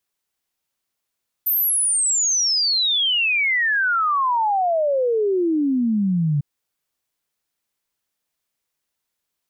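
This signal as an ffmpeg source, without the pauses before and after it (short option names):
-f lavfi -i "aevalsrc='0.15*clip(min(t,4.95-t)/0.01,0,1)*sin(2*PI*14000*4.95/log(140/14000)*(exp(log(140/14000)*t/4.95)-1))':d=4.95:s=44100"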